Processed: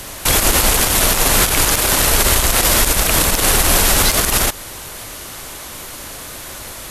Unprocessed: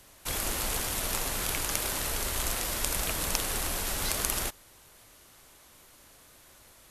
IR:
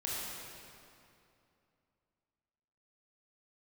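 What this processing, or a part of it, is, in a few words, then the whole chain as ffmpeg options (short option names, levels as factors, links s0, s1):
loud club master: -af "acompressor=threshold=0.0224:ratio=2.5,asoftclip=type=hard:threshold=0.168,alimiter=level_in=18.8:limit=0.891:release=50:level=0:latency=1,volume=0.891"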